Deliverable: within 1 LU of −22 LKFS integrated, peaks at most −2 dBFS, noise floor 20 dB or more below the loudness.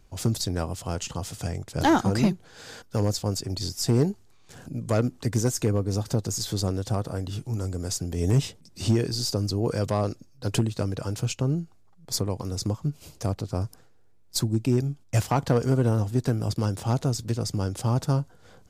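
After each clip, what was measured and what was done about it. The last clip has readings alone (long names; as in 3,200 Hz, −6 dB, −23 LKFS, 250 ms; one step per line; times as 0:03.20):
share of clipped samples 0.3%; peaks flattened at −13.5 dBFS; integrated loudness −27.0 LKFS; sample peak −13.5 dBFS; target loudness −22.0 LKFS
→ clipped peaks rebuilt −13.5 dBFS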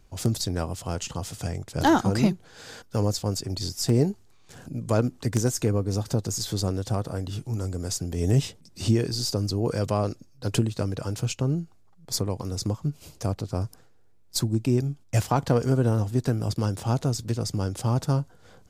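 share of clipped samples 0.0%; integrated loudness −27.0 LKFS; sample peak −5.0 dBFS; target loudness −22.0 LKFS
→ level +5 dB
brickwall limiter −2 dBFS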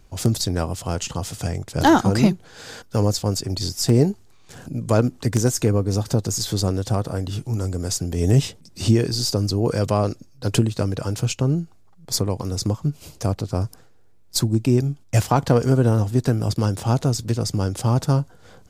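integrated loudness −22.0 LKFS; sample peak −2.0 dBFS; background noise floor −49 dBFS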